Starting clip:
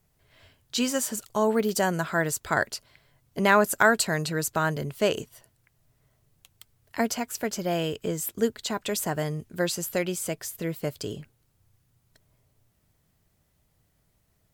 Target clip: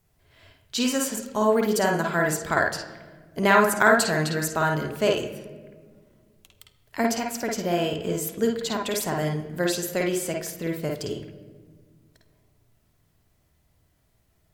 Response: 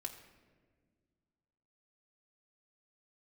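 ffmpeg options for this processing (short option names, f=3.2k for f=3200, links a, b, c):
-filter_complex "[0:a]asplit=2[a][b];[b]lowpass=5.1k[c];[1:a]atrim=start_sample=2205,adelay=52[d];[c][d]afir=irnorm=-1:irlink=0,volume=2dB[e];[a][e]amix=inputs=2:normalize=0"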